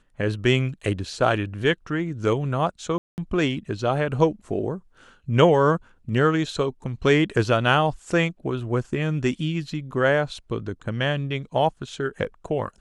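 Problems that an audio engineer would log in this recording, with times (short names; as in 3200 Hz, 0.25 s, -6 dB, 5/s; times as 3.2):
2.98–3.18 gap 0.199 s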